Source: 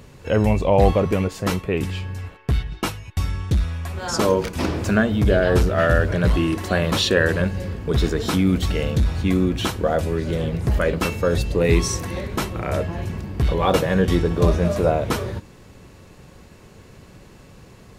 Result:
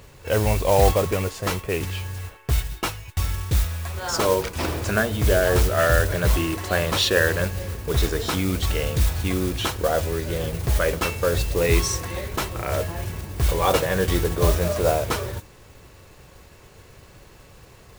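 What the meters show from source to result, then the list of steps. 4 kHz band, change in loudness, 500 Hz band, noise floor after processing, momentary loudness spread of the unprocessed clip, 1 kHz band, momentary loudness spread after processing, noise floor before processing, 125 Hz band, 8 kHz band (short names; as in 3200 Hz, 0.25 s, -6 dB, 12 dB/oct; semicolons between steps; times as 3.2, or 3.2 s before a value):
+1.0 dB, -2.0 dB, -2.0 dB, -49 dBFS, 9 LU, -0.5 dB, 9 LU, -47 dBFS, -2.5 dB, +3.5 dB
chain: bell 210 Hz -9.5 dB 1.2 oct; modulation noise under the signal 14 dB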